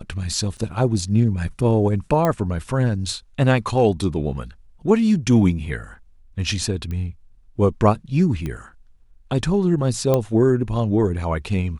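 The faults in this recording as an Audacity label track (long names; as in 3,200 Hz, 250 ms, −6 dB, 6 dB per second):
0.570000	0.580000	drop-out 6.5 ms
2.250000	2.250000	click −8 dBFS
6.910000	6.910000	click −19 dBFS
8.460000	8.460000	click −16 dBFS
10.140000	10.140000	click −7 dBFS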